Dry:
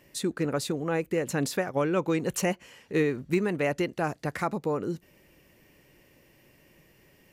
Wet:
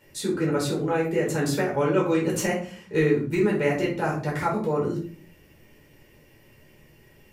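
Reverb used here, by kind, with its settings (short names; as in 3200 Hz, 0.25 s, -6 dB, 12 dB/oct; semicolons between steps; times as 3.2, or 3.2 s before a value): shoebox room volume 340 m³, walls furnished, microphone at 4.6 m; gain -4.5 dB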